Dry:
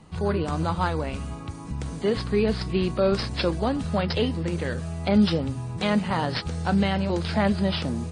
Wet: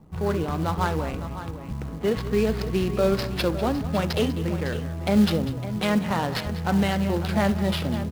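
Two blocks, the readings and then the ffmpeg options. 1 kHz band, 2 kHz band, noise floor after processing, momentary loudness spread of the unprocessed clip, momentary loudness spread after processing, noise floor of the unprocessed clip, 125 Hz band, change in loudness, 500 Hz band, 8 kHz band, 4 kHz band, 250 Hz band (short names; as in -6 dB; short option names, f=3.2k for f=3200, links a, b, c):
+0.5 dB, +0.5 dB, -34 dBFS, 7 LU, 6 LU, -37 dBFS, +0.5 dB, +0.5 dB, +0.5 dB, +4.0 dB, -1.0 dB, +0.5 dB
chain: -af "adynamicsmooth=sensitivity=8:basefreq=570,aecho=1:1:67|196|557:0.126|0.188|0.237,acrusher=bits=6:mode=log:mix=0:aa=0.000001"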